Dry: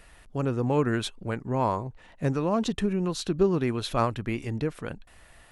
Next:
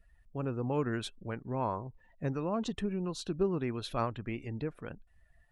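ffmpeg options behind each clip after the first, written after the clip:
-af "afftdn=nr=19:nf=-48,volume=-7.5dB"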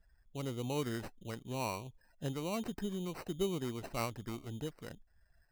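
-af "acrusher=samples=13:mix=1:aa=0.000001,volume=-4.5dB"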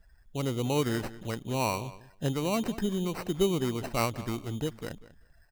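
-filter_complex "[0:a]asplit=2[a][b];[b]adelay=193,lowpass=f=5k:p=1,volume=-16.5dB,asplit=2[c][d];[d]adelay=193,lowpass=f=5k:p=1,volume=0.15[e];[a][c][e]amix=inputs=3:normalize=0,volume=8.5dB"

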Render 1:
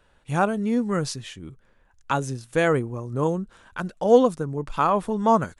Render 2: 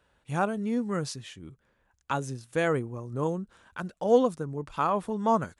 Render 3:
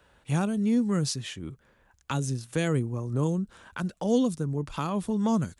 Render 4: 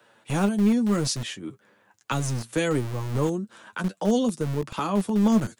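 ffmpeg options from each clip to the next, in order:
-af "highpass=44,volume=-5.5dB"
-filter_complex "[0:a]acrossover=split=290|3000[a][b][c];[b]acompressor=threshold=-44dB:ratio=3[d];[a][d][c]amix=inputs=3:normalize=0,volume=7dB"
-filter_complex "[0:a]flanger=delay=8.4:depth=1.9:regen=29:speed=0.89:shape=triangular,acrossover=split=140|390|2100[a][b][c][d];[a]acrusher=bits=4:dc=4:mix=0:aa=0.000001[e];[e][b][c][d]amix=inputs=4:normalize=0,volume=7.5dB"

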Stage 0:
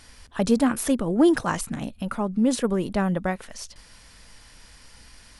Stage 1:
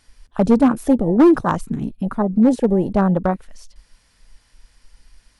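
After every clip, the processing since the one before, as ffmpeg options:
-af "afwtdn=0.0447,asoftclip=type=hard:threshold=-14.5dB,volume=7.5dB"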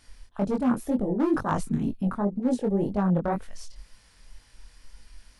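-af "areverse,acompressor=threshold=-23dB:ratio=6,areverse,flanger=delay=19.5:depth=5.6:speed=2,volume=3.5dB"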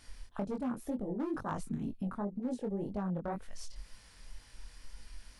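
-af "acompressor=threshold=-37dB:ratio=3"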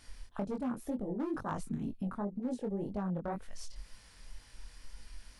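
-af anull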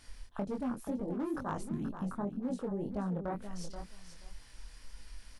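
-af "aecho=1:1:480|960:0.316|0.0538"

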